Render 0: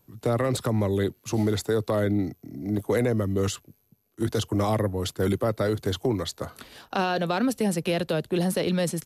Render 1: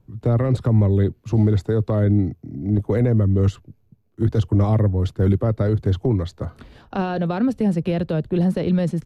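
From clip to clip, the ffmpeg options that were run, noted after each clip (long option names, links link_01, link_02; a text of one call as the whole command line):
ffmpeg -i in.wav -af "aemphasis=mode=reproduction:type=riaa,volume=-1.5dB" out.wav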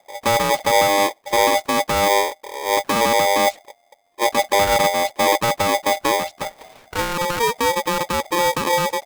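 ffmpeg -i in.wav -af "aeval=exprs='val(0)*sgn(sin(2*PI*700*n/s))':channel_layout=same" out.wav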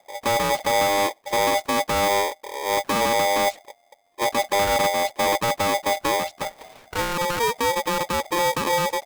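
ffmpeg -i in.wav -af "asoftclip=type=tanh:threshold=-14.5dB,volume=-1dB" out.wav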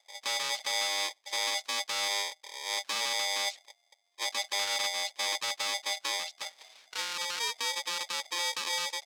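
ffmpeg -i in.wav -af "bandpass=frequency=4600:width_type=q:width=1.2:csg=0" out.wav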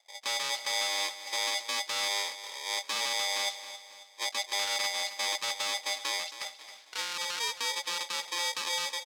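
ffmpeg -i in.wav -af "aecho=1:1:271|542|813|1084:0.224|0.0985|0.0433|0.0191" out.wav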